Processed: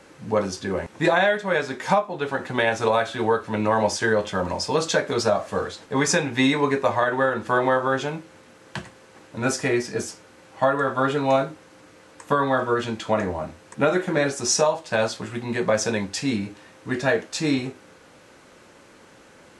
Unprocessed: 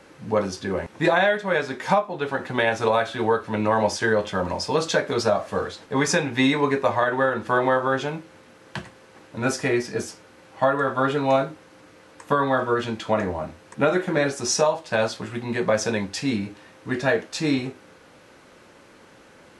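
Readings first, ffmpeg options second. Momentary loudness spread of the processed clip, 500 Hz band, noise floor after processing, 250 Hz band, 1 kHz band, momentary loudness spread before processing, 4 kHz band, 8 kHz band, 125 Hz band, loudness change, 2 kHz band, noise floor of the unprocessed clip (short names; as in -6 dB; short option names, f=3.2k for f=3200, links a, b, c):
10 LU, 0.0 dB, -51 dBFS, 0.0 dB, 0.0 dB, 10 LU, +1.0 dB, +2.5 dB, 0.0 dB, 0.0 dB, 0.0 dB, -51 dBFS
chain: -af "equalizer=f=7.5k:w=1.6:g=4"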